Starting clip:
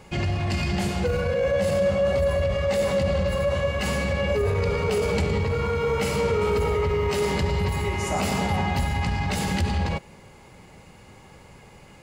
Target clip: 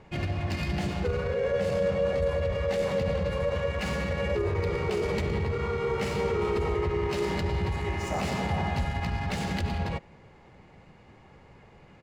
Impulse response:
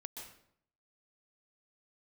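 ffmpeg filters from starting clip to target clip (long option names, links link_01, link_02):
-filter_complex "[0:a]adynamicsmooth=sensitivity=7:basefreq=3700,asplit=2[link_01][link_02];[link_02]asetrate=37084,aresample=44100,atempo=1.18921,volume=-6dB[link_03];[link_01][link_03]amix=inputs=2:normalize=0,volume=-5.5dB"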